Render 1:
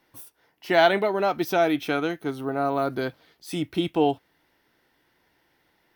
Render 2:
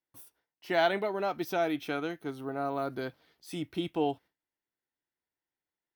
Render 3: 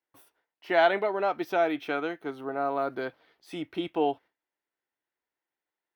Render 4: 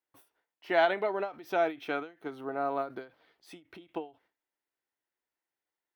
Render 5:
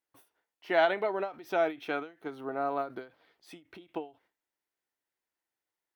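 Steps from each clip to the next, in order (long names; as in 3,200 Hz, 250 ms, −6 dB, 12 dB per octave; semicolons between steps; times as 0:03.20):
noise gate with hold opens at −49 dBFS; level −8 dB
bass and treble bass −12 dB, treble −13 dB; level +5 dB
every ending faded ahead of time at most 190 dB per second; level −2.5 dB
tape wow and flutter 27 cents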